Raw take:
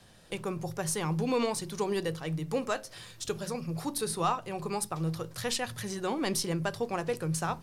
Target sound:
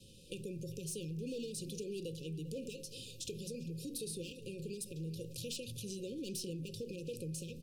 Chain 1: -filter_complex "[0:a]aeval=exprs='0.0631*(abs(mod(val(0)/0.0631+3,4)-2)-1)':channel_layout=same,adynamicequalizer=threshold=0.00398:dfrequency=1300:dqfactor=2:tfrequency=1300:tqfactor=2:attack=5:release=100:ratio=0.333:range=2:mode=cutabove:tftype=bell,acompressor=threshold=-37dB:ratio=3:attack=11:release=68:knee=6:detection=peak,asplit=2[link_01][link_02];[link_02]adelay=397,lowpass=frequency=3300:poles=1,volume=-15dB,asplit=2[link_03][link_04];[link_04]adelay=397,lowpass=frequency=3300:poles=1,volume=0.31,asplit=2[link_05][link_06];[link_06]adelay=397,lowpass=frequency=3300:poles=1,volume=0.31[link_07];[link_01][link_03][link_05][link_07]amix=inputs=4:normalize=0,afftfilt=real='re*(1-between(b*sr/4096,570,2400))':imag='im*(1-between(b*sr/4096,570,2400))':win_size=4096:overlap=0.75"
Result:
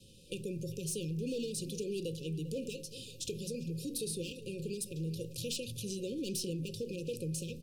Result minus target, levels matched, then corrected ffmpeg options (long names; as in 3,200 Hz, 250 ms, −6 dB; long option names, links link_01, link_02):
downward compressor: peak gain reduction −4.5 dB
-filter_complex "[0:a]aeval=exprs='0.0631*(abs(mod(val(0)/0.0631+3,4)-2)-1)':channel_layout=same,adynamicequalizer=threshold=0.00398:dfrequency=1300:dqfactor=2:tfrequency=1300:tqfactor=2:attack=5:release=100:ratio=0.333:range=2:mode=cutabove:tftype=bell,acompressor=threshold=-44dB:ratio=3:attack=11:release=68:knee=6:detection=peak,asplit=2[link_01][link_02];[link_02]adelay=397,lowpass=frequency=3300:poles=1,volume=-15dB,asplit=2[link_03][link_04];[link_04]adelay=397,lowpass=frequency=3300:poles=1,volume=0.31,asplit=2[link_05][link_06];[link_06]adelay=397,lowpass=frequency=3300:poles=1,volume=0.31[link_07];[link_01][link_03][link_05][link_07]amix=inputs=4:normalize=0,afftfilt=real='re*(1-between(b*sr/4096,570,2400))':imag='im*(1-between(b*sr/4096,570,2400))':win_size=4096:overlap=0.75"